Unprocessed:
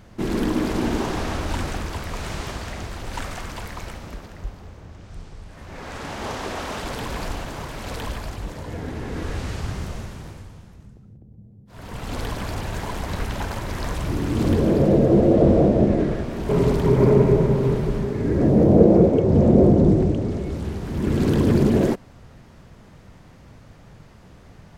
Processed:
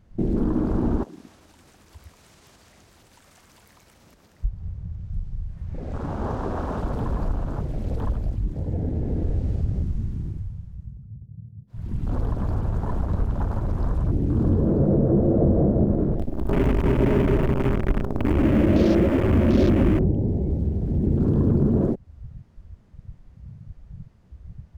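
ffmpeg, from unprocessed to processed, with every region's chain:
-filter_complex "[0:a]asettb=1/sr,asplit=3[a][b][c];[a]atrim=end=1.034[d];[b]atrim=start=1.03:end=4.44,asetpts=PTS-STARTPTS,afade=t=in:d=0.004:c=qsin,afade=t=out:st=3.406:d=0.004:c=qsin,highshelf=f=4.4k:g=11,acompressor=threshold=-32dB:ratio=16:attack=3.2:release=140:knee=1:detection=peak,highpass=f=280:p=1[e];[c]atrim=start=4.436[f];[d][e]acrossfade=d=0.004:c1=hsin:c2=qsin[g];[g][f]acrossfade=d=0.004:c1=qsin:c2=hsin,asettb=1/sr,asplit=3[h][i][j];[h]atrim=end=16.184[k];[i]atrim=start=16.18:end=19.99,asetpts=PTS-STARTPTS,afade=t=in:d=0.004:c=qsin,afade=t=out:st=3.806:d=0.004:c=qsin,aecho=1:1:3.3:0.58,atrim=end_sample=168021,acrusher=bits=4:dc=4:mix=0:aa=0.000001[l];[j]atrim=start=19.986[m];[k][l]acrossfade=d=0.004:c1=hsin:c2=qsin[n];[n][m]acrossfade=d=0.004:c1=qsin:c2=hsin,afwtdn=0.0355,lowshelf=f=270:g=10.5,acompressor=threshold=-23dB:ratio=2"

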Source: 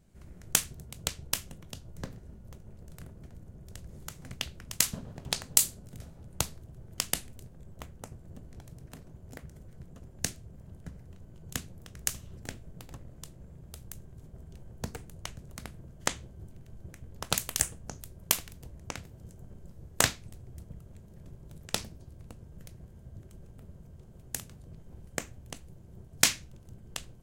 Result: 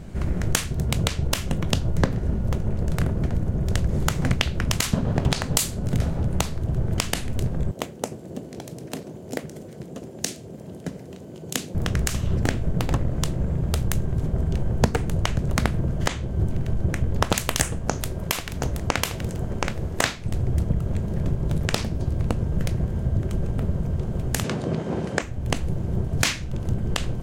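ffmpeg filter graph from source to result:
-filter_complex "[0:a]asettb=1/sr,asplit=3[a][b][c];[a]atrim=end=7.714[d];[b]atrim=start=7.71:end=11.75,asetpts=PTS-STARTPTS,afade=t=in:d=0.004:c=qsin,afade=t=out:st=4.036:d=0.004:c=qsin,highpass=330,equalizer=f=1.3k:w=0.64:g=-12.5[e];[c]atrim=start=11.746[f];[d][e]acrossfade=d=0.004:c1=hsin:c2=qsin[g];[g][f]acrossfade=d=0.004:c1=qsin:c2=hsin,asettb=1/sr,asplit=3[h][i][j];[h]atrim=end=17.794[k];[i]atrim=start=17.79:end=20.25,asetpts=PTS-STARTPTS,afade=t=in:d=0.004:c=qsin,afade=t=out:st=2.456:d=0.004:c=qsin,lowshelf=f=250:g=-7,aecho=1:1:725:0.316,atrim=end_sample=108486[l];[j]atrim=start=20.246[m];[k][l]acrossfade=d=0.004:c1=hsin:c2=qsin[n];[n][m]acrossfade=d=0.004:c1=qsin:c2=hsin,asettb=1/sr,asplit=3[o][p][q];[o]atrim=end=24.444[r];[p]atrim=start=24.44:end=25.22,asetpts=PTS-STARTPTS,afade=t=in:d=0.004:c=qsin,afade=t=out:st=0.776:d=0.004:c=qsin,acontrast=72,highpass=230,lowpass=7.3k[s];[q]atrim=start=25.216[t];[r][s]acrossfade=d=0.004:c1=hsin:c2=qsin[u];[u][t]acrossfade=d=0.004:c1=qsin:c2=hsin,lowpass=f=2.6k:p=1,acompressor=threshold=-43dB:ratio=3,alimiter=level_in=26.5dB:limit=-1dB:release=50:level=0:latency=1,volume=-1dB"

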